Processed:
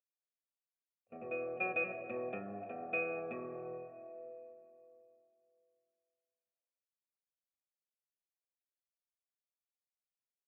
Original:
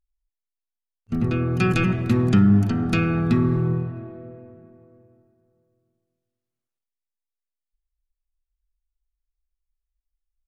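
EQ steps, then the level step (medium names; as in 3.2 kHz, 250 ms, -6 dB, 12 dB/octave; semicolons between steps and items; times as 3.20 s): cascade formant filter e; vowel filter a; bass shelf 190 Hz -5 dB; +14.0 dB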